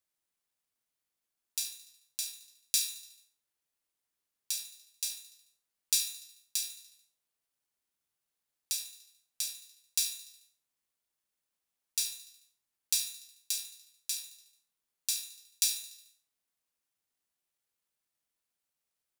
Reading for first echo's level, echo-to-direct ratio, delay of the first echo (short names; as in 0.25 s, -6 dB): -13.5 dB, -12.0 dB, 73 ms